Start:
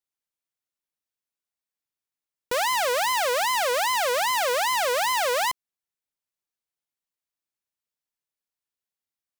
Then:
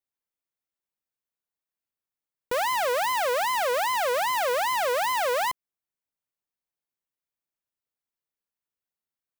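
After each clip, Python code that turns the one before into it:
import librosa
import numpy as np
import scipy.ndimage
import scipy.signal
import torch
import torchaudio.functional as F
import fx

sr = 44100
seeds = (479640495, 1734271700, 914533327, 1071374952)

y = fx.peak_eq(x, sr, hz=6000.0, db=-6.5, octaves=2.7)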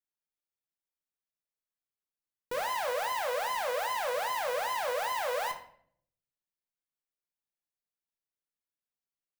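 y = fx.room_shoebox(x, sr, seeds[0], volume_m3=95.0, walls='mixed', distance_m=0.5)
y = F.gain(torch.from_numpy(y), -8.5).numpy()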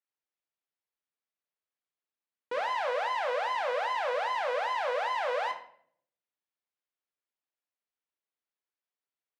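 y = fx.bandpass_edges(x, sr, low_hz=320.0, high_hz=3400.0)
y = F.gain(torch.from_numpy(y), 2.0).numpy()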